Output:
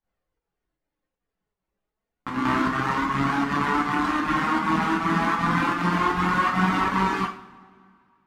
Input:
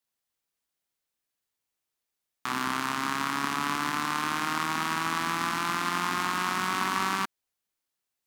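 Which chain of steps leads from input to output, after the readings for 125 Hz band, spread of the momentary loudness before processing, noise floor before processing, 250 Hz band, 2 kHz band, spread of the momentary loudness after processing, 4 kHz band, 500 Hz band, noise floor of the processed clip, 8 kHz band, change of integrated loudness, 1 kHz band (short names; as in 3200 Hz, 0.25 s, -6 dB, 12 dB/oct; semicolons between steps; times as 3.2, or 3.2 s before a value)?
+12.5 dB, 2 LU, -85 dBFS, +11.0 dB, +4.0 dB, 5 LU, -2.0 dB, +9.5 dB, -85 dBFS, -7.5 dB, +5.5 dB, +5.5 dB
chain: high shelf 4300 Hz -11 dB; on a send: reverse echo 0.188 s -5 dB; on the sum: reverb removal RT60 1.8 s; in parallel at +3 dB: limiter -24.5 dBFS, peak gain reduction 9 dB; on the sum: tilt -2.5 dB/oct; flange 0.3 Hz, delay 1.2 ms, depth 4.1 ms, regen +54%; pump 157 bpm, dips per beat 1, -14 dB, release 0.116 s; two-slope reverb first 0.38 s, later 2.3 s, from -21 dB, DRR -1 dB; mismatched tape noise reduction decoder only; gain +5 dB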